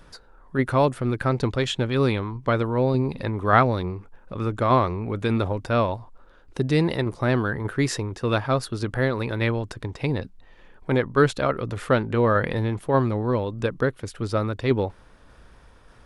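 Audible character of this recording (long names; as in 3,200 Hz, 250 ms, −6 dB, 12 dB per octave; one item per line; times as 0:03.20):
tremolo saw down 1.7 Hz, depth 30%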